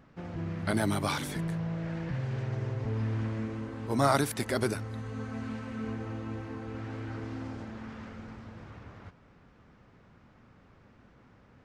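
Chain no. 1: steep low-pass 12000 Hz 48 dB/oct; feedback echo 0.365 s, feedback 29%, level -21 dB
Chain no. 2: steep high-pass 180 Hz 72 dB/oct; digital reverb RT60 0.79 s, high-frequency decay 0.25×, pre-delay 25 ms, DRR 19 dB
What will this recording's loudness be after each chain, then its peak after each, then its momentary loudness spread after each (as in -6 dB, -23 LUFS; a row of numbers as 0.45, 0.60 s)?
-33.5, -35.5 LUFS; -10.0, -12.5 dBFS; 17, 17 LU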